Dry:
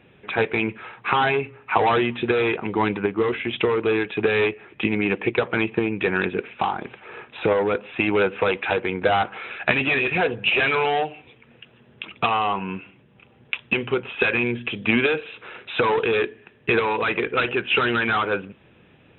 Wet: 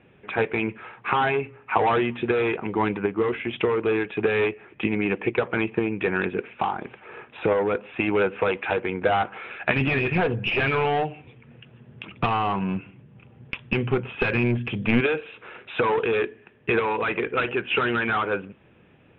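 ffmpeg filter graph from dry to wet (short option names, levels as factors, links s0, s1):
-filter_complex "[0:a]asettb=1/sr,asplit=3[s0][s1][s2];[s0]atrim=end=9.764[s3];[s1]atrim=start=9.76:end=15.01,asetpts=PTS-STARTPTS,afade=t=in:d=0.004:c=qsin,afade=t=out:st=5.246:d=0.004:c=qsin,equalizer=f=120:t=o:w=1.8:g=11,aeval=exprs='clip(val(0),-1,0.106)':c=same[s4];[s2]atrim=start=15.006[s5];[s3][s4]acrossfade=d=0.004:c1=hsin:c2=qsin[s6];[s6][s5]acrossfade=d=0.004:c1=qsin:c2=hsin,lowpass=f=3600:w=0.5412,lowpass=f=3600:w=1.3066,aemphasis=mode=reproduction:type=50fm,volume=0.794"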